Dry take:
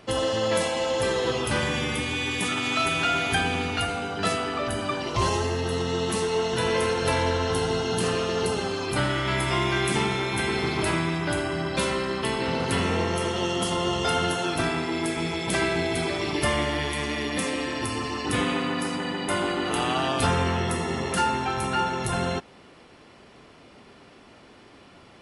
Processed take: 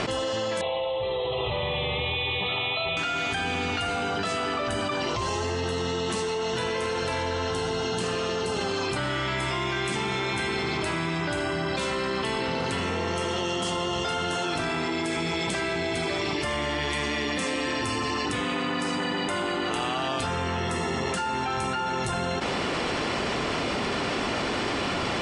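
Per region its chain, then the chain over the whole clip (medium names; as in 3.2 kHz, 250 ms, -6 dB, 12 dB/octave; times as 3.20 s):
0.61–2.97 s: brick-wall FIR low-pass 4.1 kHz + static phaser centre 640 Hz, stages 4
whole clip: steep low-pass 8.9 kHz 48 dB/octave; bass shelf 400 Hz -3.5 dB; level flattener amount 100%; trim -6.5 dB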